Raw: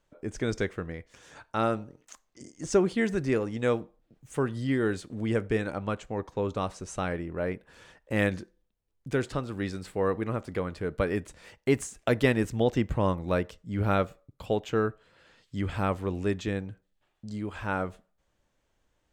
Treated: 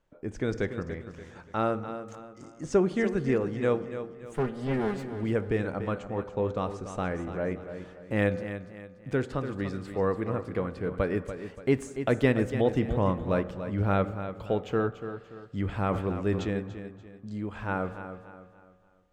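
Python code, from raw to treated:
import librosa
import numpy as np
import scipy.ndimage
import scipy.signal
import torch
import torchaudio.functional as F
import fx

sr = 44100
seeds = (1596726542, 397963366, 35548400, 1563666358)

y = fx.lower_of_two(x, sr, delay_ms=4.9, at=(4.36, 5.03))
y = fx.high_shelf(y, sr, hz=3400.0, db=-10.0)
y = fx.echo_feedback(y, sr, ms=289, feedback_pct=37, wet_db=-10.5)
y = fx.rev_fdn(y, sr, rt60_s=1.8, lf_ratio=0.9, hf_ratio=0.35, size_ms=12.0, drr_db=14.0)
y = fx.sustainer(y, sr, db_per_s=74.0, at=(15.86, 16.54))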